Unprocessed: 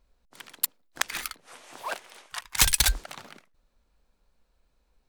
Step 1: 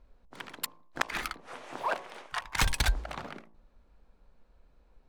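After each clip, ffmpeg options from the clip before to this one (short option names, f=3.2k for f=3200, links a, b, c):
-af "lowpass=f=1.2k:p=1,bandreject=f=55.53:t=h:w=4,bandreject=f=111.06:t=h:w=4,bandreject=f=166.59:t=h:w=4,bandreject=f=222.12:t=h:w=4,bandreject=f=277.65:t=h:w=4,bandreject=f=333.18:t=h:w=4,bandreject=f=388.71:t=h:w=4,bandreject=f=444.24:t=h:w=4,bandreject=f=499.77:t=h:w=4,bandreject=f=555.3:t=h:w=4,bandreject=f=610.83:t=h:w=4,bandreject=f=666.36:t=h:w=4,bandreject=f=721.89:t=h:w=4,bandreject=f=777.42:t=h:w=4,bandreject=f=832.95:t=h:w=4,bandreject=f=888.48:t=h:w=4,bandreject=f=944.01:t=h:w=4,bandreject=f=999.54:t=h:w=4,bandreject=f=1.05507k:t=h:w=4,bandreject=f=1.1106k:t=h:w=4,bandreject=f=1.16613k:t=h:w=4,acompressor=threshold=-37dB:ratio=2,volume=8.5dB"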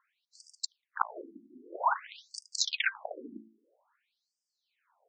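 -af "afftfilt=real='re*between(b*sr/1024,250*pow(6700/250,0.5+0.5*sin(2*PI*0.51*pts/sr))/1.41,250*pow(6700/250,0.5+0.5*sin(2*PI*0.51*pts/sr))*1.41)':imag='im*between(b*sr/1024,250*pow(6700/250,0.5+0.5*sin(2*PI*0.51*pts/sr))/1.41,250*pow(6700/250,0.5+0.5*sin(2*PI*0.51*pts/sr))*1.41)':win_size=1024:overlap=0.75,volume=5.5dB"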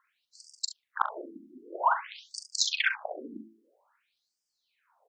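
-filter_complex "[0:a]acontrast=57,asplit=2[a][b];[b]aecho=0:1:42|69:0.355|0.2[c];[a][c]amix=inputs=2:normalize=0,volume=-3.5dB"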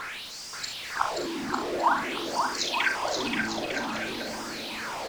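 -af "aeval=exprs='val(0)+0.5*0.0376*sgn(val(0))':c=same,aemphasis=mode=reproduction:type=50kf,aecho=1:1:530|901|1161|1342|1470:0.631|0.398|0.251|0.158|0.1"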